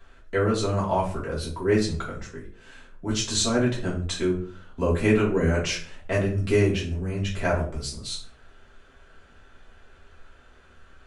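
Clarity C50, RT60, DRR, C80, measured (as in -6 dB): 7.5 dB, 0.50 s, -6.5 dB, 12.0 dB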